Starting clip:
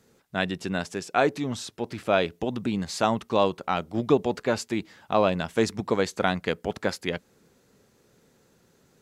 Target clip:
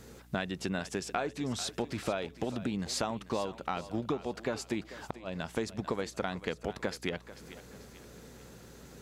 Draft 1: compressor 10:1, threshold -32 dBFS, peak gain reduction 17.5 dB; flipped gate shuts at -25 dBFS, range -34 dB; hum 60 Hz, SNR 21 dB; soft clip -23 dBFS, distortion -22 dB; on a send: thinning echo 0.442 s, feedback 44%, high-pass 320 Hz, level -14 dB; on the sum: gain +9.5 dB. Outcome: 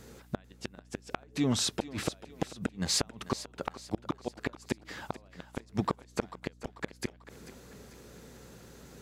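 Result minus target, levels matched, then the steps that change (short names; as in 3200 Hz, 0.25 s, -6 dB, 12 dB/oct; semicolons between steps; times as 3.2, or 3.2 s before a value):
compressor: peak gain reduction -7 dB
change: compressor 10:1, threshold -40 dBFS, peak gain reduction 25 dB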